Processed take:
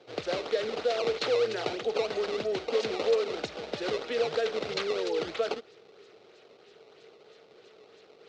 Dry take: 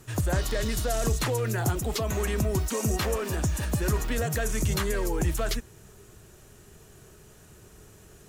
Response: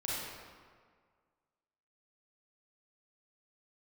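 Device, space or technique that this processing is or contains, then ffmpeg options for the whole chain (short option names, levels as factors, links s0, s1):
circuit-bent sampling toy: -af "acrusher=samples=16:mix=1:aa=0.000001:lfo=1:lforange=25.6:lforate=3.1,highpass=440,equalizer=f=460:t=q:w=4:g=10,equalizer=f=1000:t=q:w=4:g=-9,equalizer=f=1700:t=q:w=4:g=-6,equalizer=f=4000:t=q:w=4:g=4,lowpass=f=5200:w=0.5412,lowpass=f=5200:w=1.3066"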